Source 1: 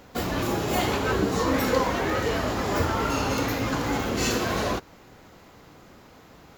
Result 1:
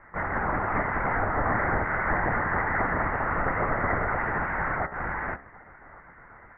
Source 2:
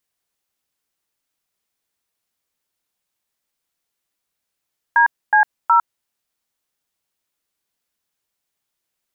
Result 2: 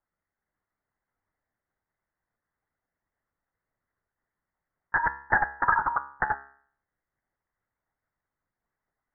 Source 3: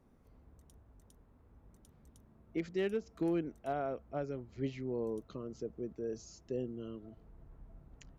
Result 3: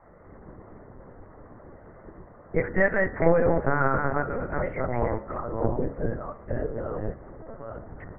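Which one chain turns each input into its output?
reverse delay 0.486 s, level -3 dB; spectral gate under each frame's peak -10 dB weak; sine folder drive 7 dB, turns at -1.5 dBFS; compressor, threshold -17 dBFS; LPC vocoder at 8 kHz pitch kept; Chebyshev low-pass 2000 Hz, order 6; de-hum 68.96 Hz, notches 29; match loudness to -27 LUFS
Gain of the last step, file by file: -2.5, +1.0, +12.0 dB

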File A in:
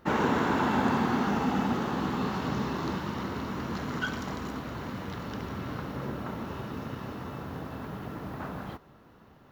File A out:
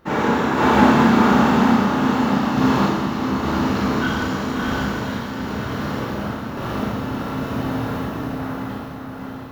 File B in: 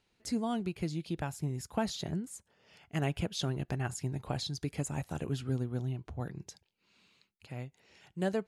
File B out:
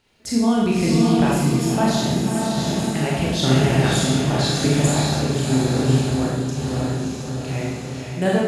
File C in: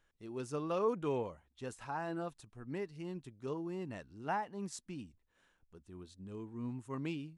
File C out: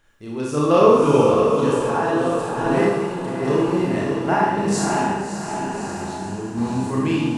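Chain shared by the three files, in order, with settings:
diffused feedback echo 0.606 s, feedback 59%, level -3.5 dB; random-step tremolo; Schroeder reverb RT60 1 s, combs from 27 ms, DRR -4.5 dB; match loudness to -20 LUFS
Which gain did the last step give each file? +6.0, +12.5, +15.5 dB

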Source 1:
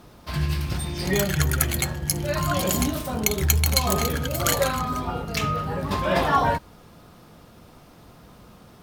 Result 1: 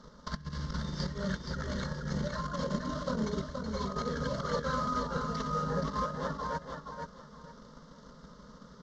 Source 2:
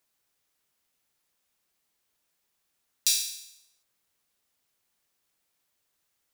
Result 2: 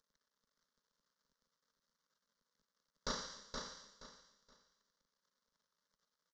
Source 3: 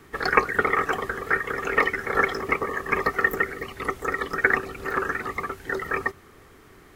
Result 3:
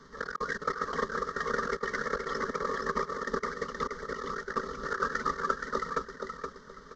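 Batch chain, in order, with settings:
CVSD 32 kbps; transient shaper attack +12 dB, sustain -2 dB; negative-ratio compressor -25 dBFS, ratio -0.5; fixed phaser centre 500 Hz, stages 8; feedback echo 0.473 s, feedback 25%, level -5 dB; gain -6.5 dB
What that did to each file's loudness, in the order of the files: -11.5, -19.0, -8.5 LU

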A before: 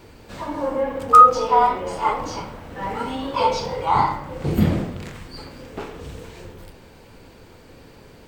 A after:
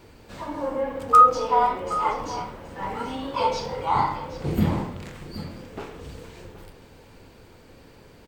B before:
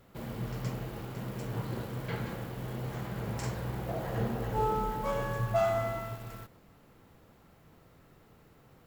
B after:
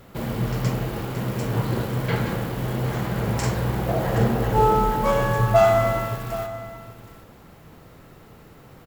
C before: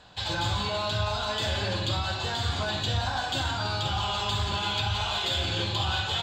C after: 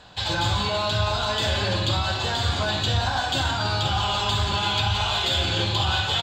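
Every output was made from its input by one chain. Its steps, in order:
echo 0.773 s -14.5 dB; match loudness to -23 LUFS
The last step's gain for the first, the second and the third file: -4.0, +11.5, +4.5 dB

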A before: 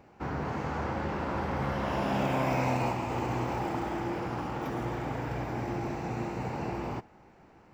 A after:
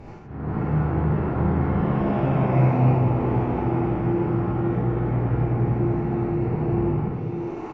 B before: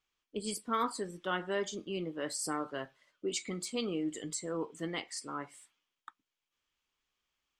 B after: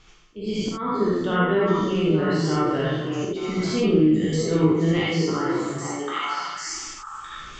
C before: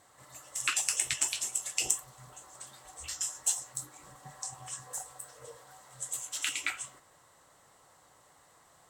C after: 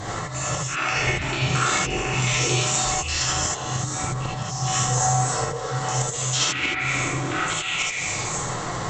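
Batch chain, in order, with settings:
spectral trails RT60 0.77 s; downsampling 16000 Hz; on a send: delay with a stepping band-pass 0.291 s, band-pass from 150 Hz, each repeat 1.4 oct, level -1 dB; on the sum: dynamic EQ 1100 Hz, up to -3 dB, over -42 dBFS, Q 0.77; treble ducked by the level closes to 1800 Hz, closed at -28.5 dBFS; low shelf 280 Hz +12 dB; auto swell 0.364 s; reverse; upward compressor, threshold -28 dBFS; reverse; non-linear reverb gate 0.1 s rising, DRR -4 dB; match loudness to -23 LUFS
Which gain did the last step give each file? -3.5, +4.5, +9.0 dB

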